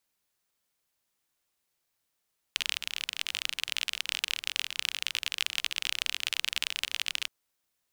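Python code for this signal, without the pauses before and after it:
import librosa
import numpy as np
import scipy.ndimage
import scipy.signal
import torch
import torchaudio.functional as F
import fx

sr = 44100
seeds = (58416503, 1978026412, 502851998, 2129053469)

y = fx.rain(sr, seeds[0], length_s=4.72, drops_per_s=34.0, hz=2900.0, bed_db=-29.0)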